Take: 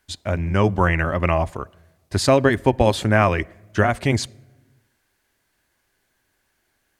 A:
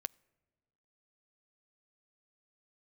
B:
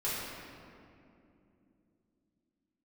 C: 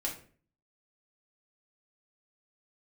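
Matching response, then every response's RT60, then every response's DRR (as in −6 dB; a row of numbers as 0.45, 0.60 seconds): A; non-exponential decay, 2.7 s, 0.45 s; 19.5, −9.5, −3.0 decibels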